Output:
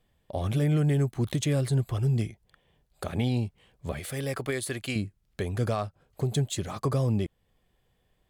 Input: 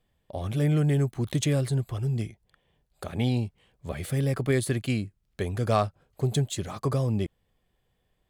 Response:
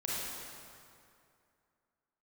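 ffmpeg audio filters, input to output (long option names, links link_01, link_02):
-filter_complex "[0:a]asettb=1/sr,asplit=3[link_01][link_02][link_03];[link_01]atrim=end=3.994[link_04];[link_02]atrim=start=3.99:end=4.96,asetpts=PTS-STARTPTS,afade=type=in:duration=0.004:curve=qsin,afade=type=out:start_time=0.966:duration=0.004:curve=qsin,equalizer=frequency=140:width_type=o:width=2.8:gain=-11[link_05];[link_03]atrim=start=4.956[link_06];[link_04][link_05]acrossfade=duration=0.004:curve1=hsin:curve2=qsin[link_07];[link_07][link_06]acrossfade=duration=0.004:curve1=qsin:curve2=hsin,alimiter=limit=-21dB:level=0:latency=1:release=361,volume=3dB" -ar 48000 -c:a libmp3lame -b:a 160k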